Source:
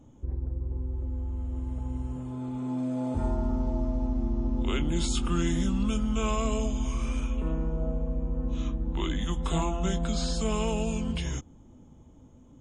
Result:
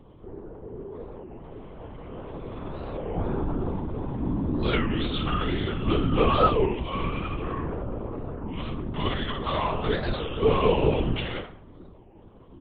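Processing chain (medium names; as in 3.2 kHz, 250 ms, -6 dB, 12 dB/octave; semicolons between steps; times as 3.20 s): high-pass 270 Hz 12 dB/octave; in parallel at -0.5 dB: peak limiter -27.5 dBFS, peak gain reduction 8 dB; on the sum: doubling 18 ms -3 dB; flutter echo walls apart 10.2 m, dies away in 0.35 s; on a send at -1.5 dB: reverberation RT60 0.60 s, pre-delay 3 ms; on the sum: LPC vocoder at 8 kHz whisper; warped record 33 1/3 rpm, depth 250 cents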